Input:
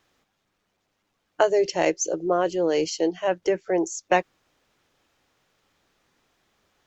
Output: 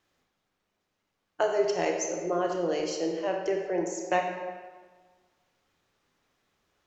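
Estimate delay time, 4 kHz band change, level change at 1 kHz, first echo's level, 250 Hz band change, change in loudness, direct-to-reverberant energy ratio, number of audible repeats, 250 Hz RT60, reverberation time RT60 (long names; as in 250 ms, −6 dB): no echo audible, −6.0 dB, −4.5 dB, no echo audible, −5.5 dB, −5.5 dB, 1.5 dB, no echo audible, 1.4 s, 1.5 s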